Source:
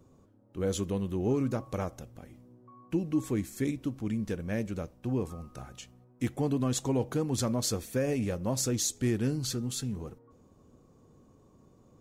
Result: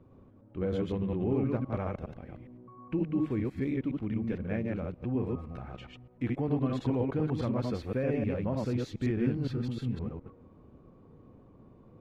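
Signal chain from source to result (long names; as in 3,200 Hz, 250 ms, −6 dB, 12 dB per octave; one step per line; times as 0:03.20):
delay that plays each chunk backwards 103 ms, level −1 dB
parametric band 2,300 Hz +4 dB 0.45 octaves
in parallel at 0 dB: downward compressor, threshold −38 dBFS, peak gain reduction 16.5 dB
on the sum: high-frequency loss of the air 410 metres
level −3.5 dB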